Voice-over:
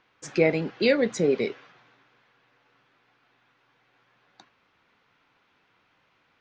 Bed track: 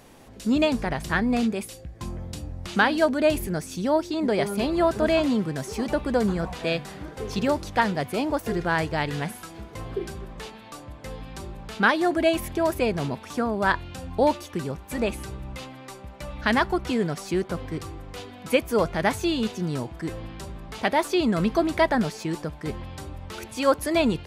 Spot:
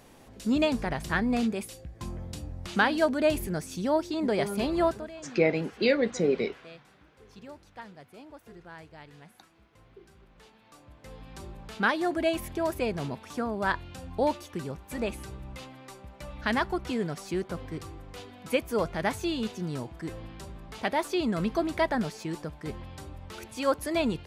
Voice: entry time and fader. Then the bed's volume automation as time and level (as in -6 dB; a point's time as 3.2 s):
5.00 s, -2.5 dB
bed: 4.88 s -3.5 dB
5.11 s -22.5 dB
10 s -22.5 dB
11.44 s -5.5 dB